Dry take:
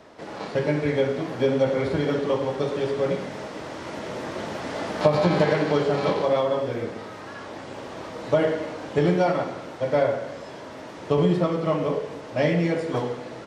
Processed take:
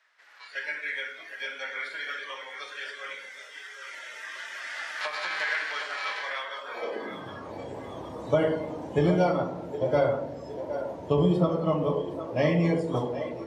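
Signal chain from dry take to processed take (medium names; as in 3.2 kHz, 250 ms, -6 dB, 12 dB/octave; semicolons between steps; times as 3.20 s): high-pass sweep 1.7 kHz -> 70 Hz, 6.60–7.41 s; two-band feedback delay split 340 Hz, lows 116 ms, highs 764 ms, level -9 dB; spectral noise reduction 12 dB; trim -3 dB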